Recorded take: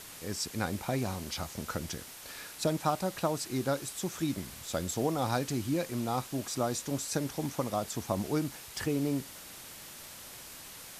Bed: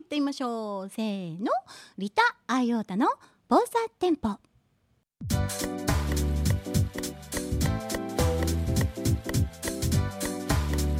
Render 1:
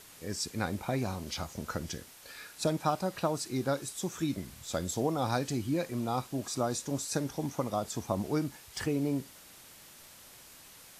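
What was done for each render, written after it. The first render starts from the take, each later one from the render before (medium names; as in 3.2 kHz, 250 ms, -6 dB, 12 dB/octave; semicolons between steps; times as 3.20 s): noise print and reduce 6 dB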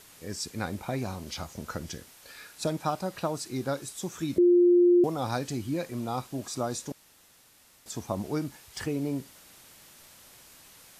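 4.38–5.04 s: bleep 352 Hz -16 dBFS; 6.92–7.86 s: room tone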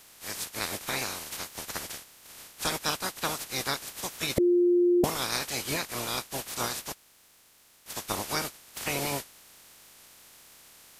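spectral peaks clipped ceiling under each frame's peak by 30 dB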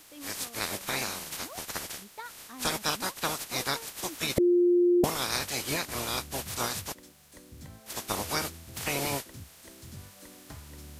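add bed -20.5 dB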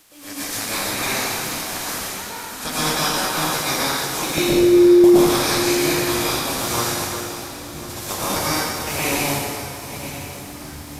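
backward echo that repeats 525 ms, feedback 63%, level -12 dB; plate-style reverb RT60 2 s, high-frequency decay 0.85×, pre-delay 95 ms, DRR -10 dB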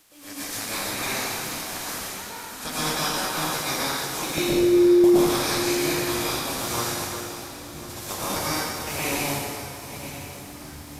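trim -5 dB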